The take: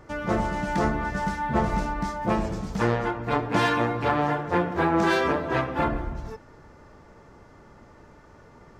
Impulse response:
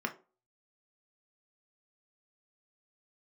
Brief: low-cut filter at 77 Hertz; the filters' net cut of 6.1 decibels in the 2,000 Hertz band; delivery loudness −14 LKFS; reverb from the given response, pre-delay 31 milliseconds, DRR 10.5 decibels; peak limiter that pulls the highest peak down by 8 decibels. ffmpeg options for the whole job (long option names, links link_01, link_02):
-filter_complex "[0:a]highpass=77,equalizer=frequency=2000:width_type=o:gain=-8.5,alimiter=limit=-17.5dB:level=0:latency=1,asplit=2[link_01][link_02];[1:a]atrim=start_sample=2205,adelay=31[link_03];[link_02][link_03]afir=irnorm=-1:irlink=0,volume=-15dB[link_04];[link_01][link_04]amix=inputs=2:normalize=0,volume=14.5dB"